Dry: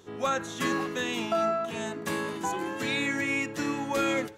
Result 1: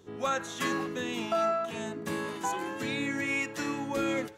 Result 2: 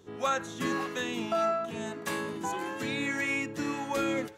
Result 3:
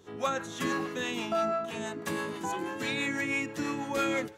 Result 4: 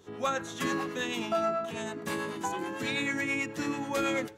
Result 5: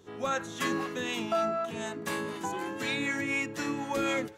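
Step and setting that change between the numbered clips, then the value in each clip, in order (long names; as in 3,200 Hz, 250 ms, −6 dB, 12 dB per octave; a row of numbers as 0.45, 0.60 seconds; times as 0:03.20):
two-band tremolo in antiphase, speed: 1, 1.7, 6.1, 9.2, 4 Hertz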